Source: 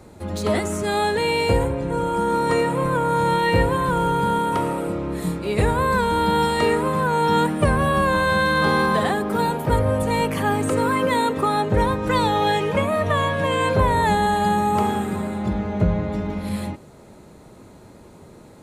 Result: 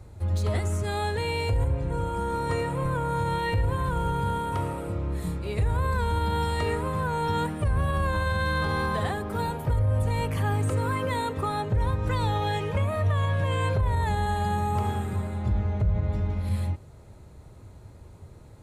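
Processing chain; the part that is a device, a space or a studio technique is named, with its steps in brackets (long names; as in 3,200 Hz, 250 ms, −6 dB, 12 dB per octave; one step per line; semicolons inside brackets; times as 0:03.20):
car stereo with a boomy subwoofer (low shelf with overshoot 140 Hz +12 dB, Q 1.5; brickwall limiter −9 dBFS, peak gain reduction 11 dB)
level −8 dB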